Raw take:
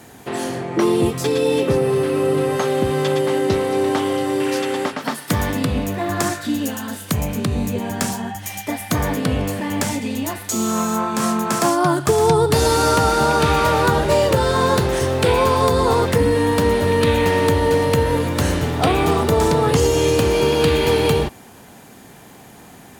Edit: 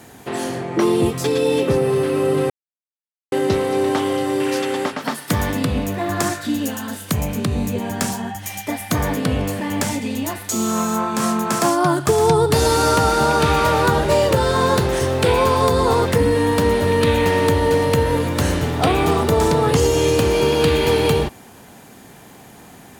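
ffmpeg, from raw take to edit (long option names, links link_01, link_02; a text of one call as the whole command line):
ffmpeg -i in.wav -filter_complex "[0:a]asplit=3[link_01][link_02][link_03];[link_01]atrim=end=2.5,asetpts=PTS-STARTPTS,afade=type=out:start_time=2.496:duration=0.004:curve=hsin[link_04];[link_02]atrim=start=2.5:end=3.32,asetpts=PTS-STARTPTS,volume=0[link_05];[link_03]atrim=start=3.32,asetpts=PTS-STARTPTS,afade=type=in:duration=0.004:curve=hsin[link_06];[link_04][link_05][link_06]concat=n=3:v=0:a=1" out.wav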